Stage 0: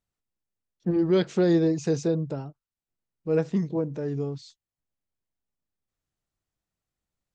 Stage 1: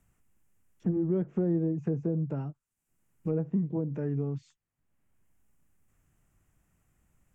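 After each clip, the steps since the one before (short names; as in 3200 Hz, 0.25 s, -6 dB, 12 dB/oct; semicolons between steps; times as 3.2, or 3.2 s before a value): treble ducked by the level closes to 750 Hz, closed at -22.5 dBFS; EQ curve 170 Hz 0 dB, 280 Hz -3 dB, 510 Hz -8 dB, 2800 Hz -2 dB, 4100 Hz -13 dB, 7200 Hz +7 dB; three-band squash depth 70%; gain -1.5 dB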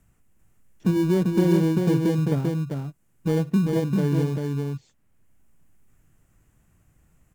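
in parallel at -9 dB: sample-rate reducer 1300 Hz, jitter 0%; on the sum: echo 0.393 s -3.5 dB; gain +5 dB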